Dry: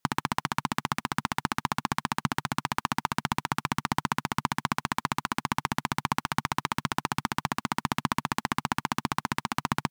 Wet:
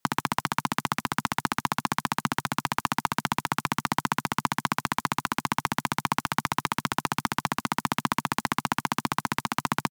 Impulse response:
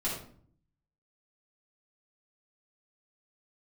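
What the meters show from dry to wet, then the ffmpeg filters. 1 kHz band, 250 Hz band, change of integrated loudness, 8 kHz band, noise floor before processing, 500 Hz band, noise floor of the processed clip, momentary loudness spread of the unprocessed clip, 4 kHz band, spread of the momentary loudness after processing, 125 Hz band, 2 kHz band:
+2.0 dB, +1.5 dB, +2.0 dB, +3.0 dB, -79 dBFS, +2.0 dB, -76 dBFS, 1 LU, +2.0 dB, 1 LU, 0.0 dB, +2.0 dB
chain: -filter_complex "[0:a]acrossover=split=170|1400|6200[s0][s1][s2][s3];[s0]alimiter=level_in=2.82:limit=0.0631:level=0:latency=1,volume=0.355[s4];[s3]asplit=2[s5][s6];[s6]adelay=16,volume=0.708[s7];[s5][s7]amix=inputs=2:normalize=0[s8];[s4][s1][s2][s8]amix=inputs=4:normalize=0,volume=1.26"

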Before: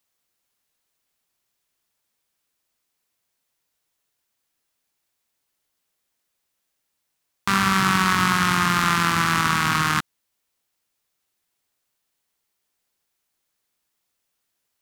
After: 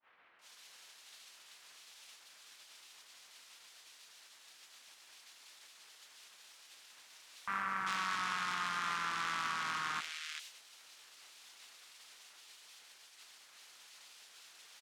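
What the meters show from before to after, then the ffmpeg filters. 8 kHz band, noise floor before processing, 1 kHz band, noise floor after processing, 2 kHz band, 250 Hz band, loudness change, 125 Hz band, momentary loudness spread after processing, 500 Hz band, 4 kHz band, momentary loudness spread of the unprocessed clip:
-16.5 dB, -77 dBFS, -16.0 dB, -61 dBFS, -15.5 dB, -29.0 dB, -17.5 dB, -30.5 dB, 20 LU, -20.5 dB, -15.0 dB, 5 LU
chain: -filter_complex "[0:a]aeval=exprs='val(0)+0.5*0.119*sgn(val(0))':c=same,lowpass=2900,aderivative,agate=range=0.0398:threshold=0.01:ratio=16:detection=peak,aeval=exprs='0.119*(cos(1*acos(clip(val(0)/0.119,-1,1)))-cos(1*PI/2))+0.0106*(cos(3*acos(clip(val(0)/0.119,-1,1)))-cos(3*PI/2))':c=same,acrossover=split=2100[s0][s1];[s1]adelay=390[s2];[s0][s2]amix=inputs=2:normalize=0,adynamicequalizer=threshold=0.00398:dfrequency=1900:dqfactor=0.7:tfrequency=1900:tqfactor=0.7:attack=5:release=100:ratio=0.375:range=2.5:mode=cutabove:tftype=highshelf"

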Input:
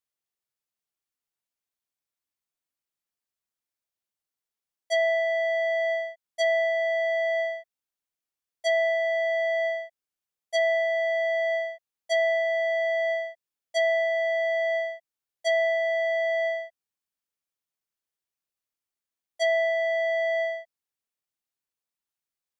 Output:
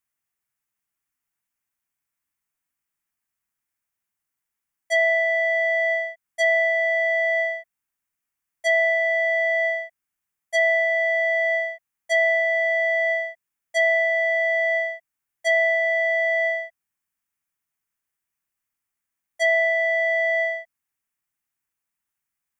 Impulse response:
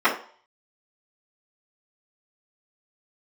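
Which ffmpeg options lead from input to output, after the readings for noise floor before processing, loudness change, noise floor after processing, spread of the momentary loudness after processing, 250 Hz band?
under -85 dBFS, +5.0 dB, -84 dBFS, 9 LU, no reading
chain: -af "equalizer=f=500:t=o:w=1:g=-10,equalizer=f=2000:t=o:w=1:g=4,equalizer=f=4000:t=o:w=1:g=-11,volume=2.37"

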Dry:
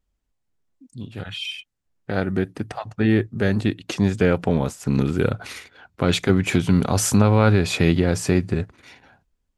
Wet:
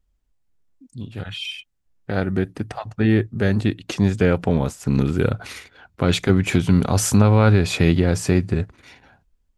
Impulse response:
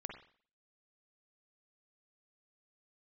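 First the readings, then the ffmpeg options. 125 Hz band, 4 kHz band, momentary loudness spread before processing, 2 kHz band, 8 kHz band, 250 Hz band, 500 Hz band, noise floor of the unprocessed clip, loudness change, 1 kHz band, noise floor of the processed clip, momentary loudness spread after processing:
+2.5 dB, 0.0 dB, 16 LU, 0.0 dB, 0.0 dB, +1.0 dB, 0.0 dB, -75 dBFS, +1.5 dB, 0.0 dB, -67 dBFS, 15 LU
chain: -af "lowshelf=f=68:g=9"

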